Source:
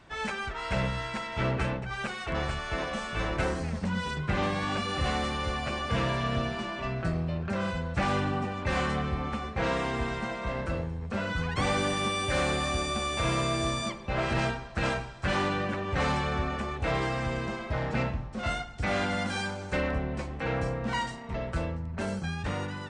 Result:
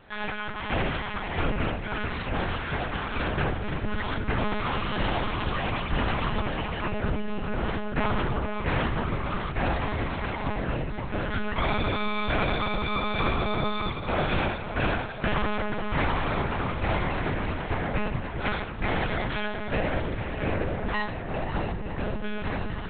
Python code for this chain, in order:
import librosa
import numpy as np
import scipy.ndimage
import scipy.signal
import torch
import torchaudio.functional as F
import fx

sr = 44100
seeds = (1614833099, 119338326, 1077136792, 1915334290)

y = fx.echo_diffused(x, sr, ms=572, feedback_pct=49, wet_db=-8.0)
y = fx.lpc_monotone(y, sr, seeds[0], pitch_hz=210.0, order=8)
y = F.gain(torch.from_numpy(y), 2.0).numpy()